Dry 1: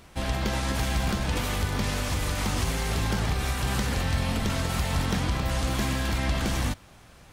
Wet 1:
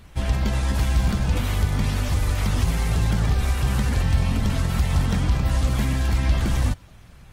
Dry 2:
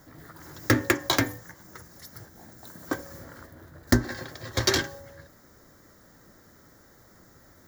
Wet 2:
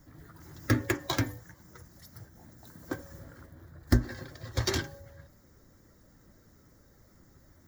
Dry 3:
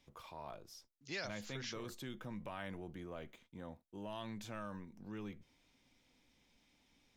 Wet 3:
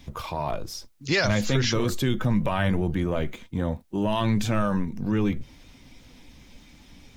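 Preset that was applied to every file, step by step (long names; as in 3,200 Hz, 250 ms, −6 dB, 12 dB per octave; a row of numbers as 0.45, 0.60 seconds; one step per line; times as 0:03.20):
spectral magnitudes quantised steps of 15 dB
low-shelf EQ 170 Hz +10 dB
normalise the peak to −9 dBFS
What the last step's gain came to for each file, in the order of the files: −0.5, −7.5, +19.0 decibels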